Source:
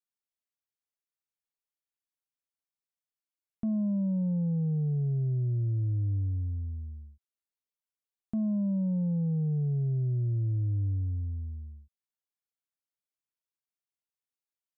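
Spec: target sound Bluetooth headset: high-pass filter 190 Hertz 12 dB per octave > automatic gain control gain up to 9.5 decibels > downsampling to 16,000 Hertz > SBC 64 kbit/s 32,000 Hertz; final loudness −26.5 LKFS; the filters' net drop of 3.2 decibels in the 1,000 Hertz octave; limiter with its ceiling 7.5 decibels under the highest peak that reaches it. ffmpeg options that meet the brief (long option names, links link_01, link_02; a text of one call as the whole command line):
ffmpeg -i in.wav -af "equalizer=frequency=1000:width_type=o:gain=-4.5,alimiter=level_in=9.5dB:limit=-24dB:level=0:latency=1,volume=-9.5dB,highpass=190,dynaudnorm=maxgain=9.5dB,aresample=16000,aresample=44100,volume=16dB" -ar 32000 -c:a sbc -b:a 64k out.sbc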